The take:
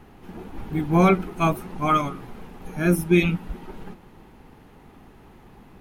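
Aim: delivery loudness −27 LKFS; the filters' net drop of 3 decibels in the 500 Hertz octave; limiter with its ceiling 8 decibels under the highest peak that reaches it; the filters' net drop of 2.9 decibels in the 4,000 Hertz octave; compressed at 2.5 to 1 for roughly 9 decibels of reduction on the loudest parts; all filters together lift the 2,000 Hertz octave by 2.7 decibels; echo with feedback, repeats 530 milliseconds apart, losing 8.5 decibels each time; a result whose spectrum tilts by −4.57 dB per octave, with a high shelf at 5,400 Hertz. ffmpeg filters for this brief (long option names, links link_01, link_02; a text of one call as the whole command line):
ffmpeg -i in.wav -af "equalizer=frequency=500:width_type=o:gain=-5,equalizer=frequency=2000:width_type=o:gain=5.5,equalizer=frequency=4000:width_type=o:gain=-7.5,highshelf=frequency=5400:gain=4,acompressor=threshold=-27dB:ratio=2.5,alimiter=limit=-22.5dB:level=0:latency=1,aecho=1:1:530|1060|1590|2120:0.376|0.143|0.0543|0.0206,volume=7dB" out.wav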